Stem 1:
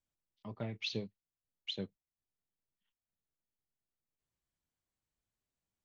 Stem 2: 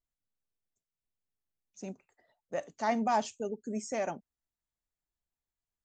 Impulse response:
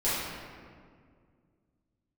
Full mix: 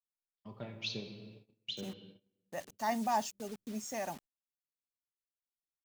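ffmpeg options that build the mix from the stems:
-filter_complex "[0:a]highshelf=f=4k:g=8,bandreject=f=2.1k:w=8.3,volume=-5dB,asplit=2[a][b];[b]volume=-15dB[c];[1:a]aecho=1:1:1.1:0.42,acrusher=bits=7:mix=0:aa=0.000001,adynamicequalizer=threshold=0.00447:dfrequency=3700:dqfactor=0.7:tfrequency=3700:tqfactor=0.7:attack=5:release=100:ratio=0.375:range=3:mode=boostabove:tftype=highshelf,volume=-5dB,asplit=2[d][e];[e]apad=whole_len=257700[f];[a][f]sidechaincompress=threshold=-53dB:ratio=8:attack=16:release=390[g];[2:a]atrim=start_sample=2205[h];[c][h]afir=irnorm=-1:irlink=0[i];[g][d][i]amix=inputs=3:normalize=0,agate=range=-21dB:threshold=-55dB:ratio=16:detection=peak"

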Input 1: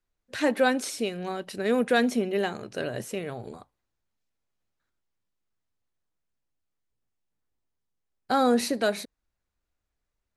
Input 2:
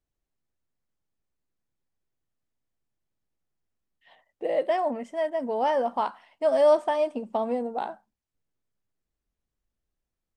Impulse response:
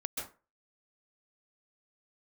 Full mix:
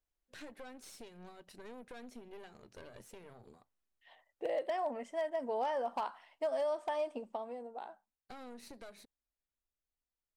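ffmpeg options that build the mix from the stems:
-filter_complex "[0:a]highpass=83,acompressor=threshold=-29dB:ratio=8,aeval=exprs='(tanh(35.5*val(0)+0.8)-tanh(0.8))/35.5':c=same,volume=-12.5dB[a];[1:a]equalizer=f=150:w=0.73:g=-10.5,acompressor=threshold=-27dB:ratio=16,volume=-4dB,afade=t=out:st=7.1:d=0.4:silence=0.398107[b];[a][b]amix=inputs=2:normalize=0,aeval=exprs='0.0422*(abs(mod(val(0)/0.0422+3,4)-2)-1)':c=same"

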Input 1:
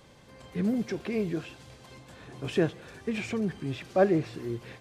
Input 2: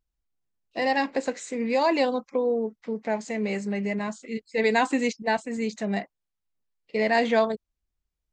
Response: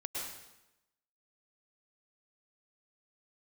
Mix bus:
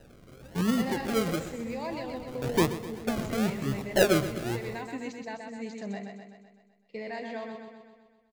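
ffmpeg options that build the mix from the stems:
-filter_complex "[0:a]bandreject=f=50:t=h:w=6,bandreject=f=100:t=h:w=6,bandreject=f=150:t=h:w=6,bandreject=f=200:t=h:w=6,acrusher=samples=39:mix=1:aa=0.000001:lfo=1:lforange=23.4:lforate=1,volume=0dB,asplit=2[a][b];[b]volume=-14dB[c];[1:a]alimiter=limit=-18.5dB:level=0:latency=1:release=450,volume=-10dB,asplit=2[d][e];[e]volume=-5dB[f];[c][f]amix=inputs=2:normalize=0,aecho=0:1:127|254|381|508|635|762|889|1016|1143:1|0.57|0.325|0.185|0.106|0.0602|0.0343|0.0195|0.0111[g];[a][d][g]amix=inputs=3:normalize=0,lowshelf=f=180:g=4"

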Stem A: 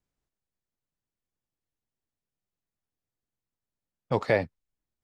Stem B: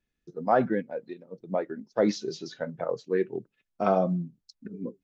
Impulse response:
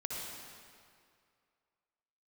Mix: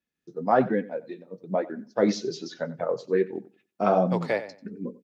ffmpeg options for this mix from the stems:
-filter_complex "[0:a]highpass=190,volume=-8.5dB,asplit=2[a][b];[b]volume=-13.5dB[c];[1:a]flanger=delay=3.5:depth=7.3:regen=-41:speed=1.2:shape=sinusoidal,volume=0dB,asplit=3[d][e][f];[e]volume=-18.5dB[g];[f]apad=whole_len=222010[h];[a][h]sidechaingate=range=-33dB:threshold=-53dB:ratio=16:detection=peak[i];[c][g]amix=inputs=2:normalize=0,aecho=0:1:92|184|276|368:1|0.22|0.0484|0.0106[j];[i][d][j]amix=inputs=3:normalize=0,highpass=110,dynaudnorm=f=140:g=3:m=6dB"

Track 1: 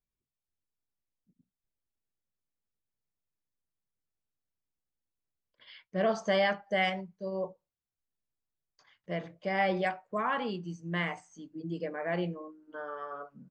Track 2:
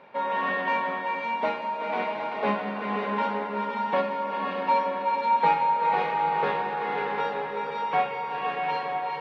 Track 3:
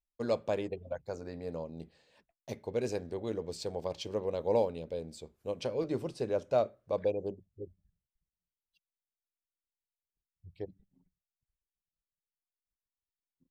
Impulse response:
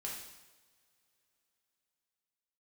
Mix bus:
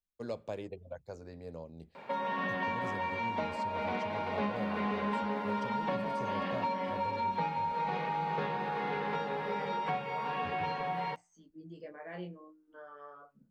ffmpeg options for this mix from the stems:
-filter_complex "[0:a]flanger=delay=16:depth=6.2:speed=0.28,volume=-7.5dB[a];[1:a]bass=f=250:g=3,treble=f=4k:g=4,adelay=1950,volume=2dB[b];[2:a]asubboost=boost=2:cutoff=170,volume=-5.5dB[c];[a][b][c]amix=inputs=3:normalize=0,acrossover=split=210|4500[d][e][f];[d]acompressor=threshold=-38dB:ratio=4[g];[e]acompressor=threshold=-34dB:ratio=4[h];[f]acompressor=threshold=-60dB:ratio=4[i];[g][h][i]amix=inputs=3:normalize=0"

